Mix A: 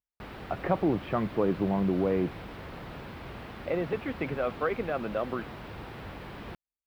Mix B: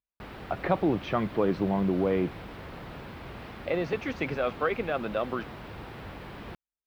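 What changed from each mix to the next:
speech: remove distance through air 400 m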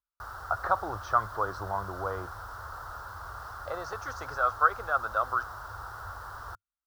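master: add FFT filter 100 Hz 0 dB, 160 Hz -22 dB, 230 Hz -24 dB, 1.4 kHz +12 dB, 2.3 kHz -23 dB, 5.6 kHz +8 dB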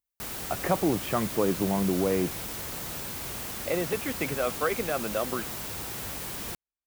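background: remove distance through air 410 m; master: remove FFT filter 100 Hz 0 dB, 160 Hz -22 dB, 230 Hz -24 dB, 1.4 kHz +12 dB, 2.3 kHz -23 dB, 5.6 kHz +8 dB

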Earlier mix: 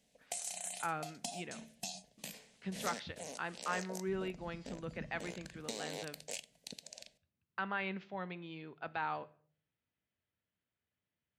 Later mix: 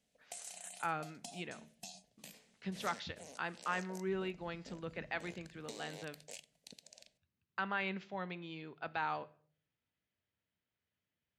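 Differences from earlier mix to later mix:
speech: remove distance through air 110 m; background -7.0 dB

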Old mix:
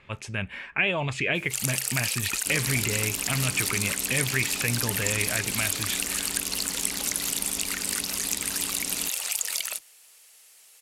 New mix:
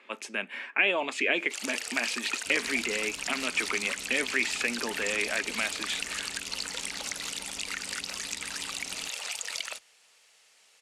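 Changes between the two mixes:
speech: add steep high-pass 230 Hz 48 dB/octave; first sound: add distance through air 90 m; second sound -10.0 dB

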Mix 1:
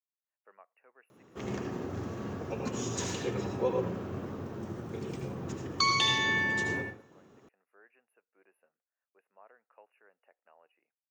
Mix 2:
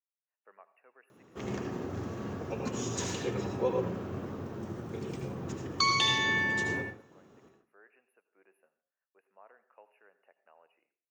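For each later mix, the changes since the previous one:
speech: send on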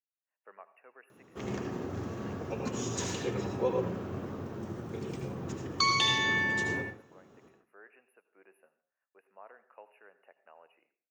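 speech +5.0 dB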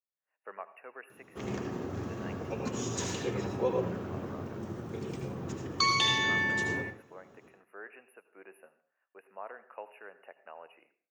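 speech +8.5 dB

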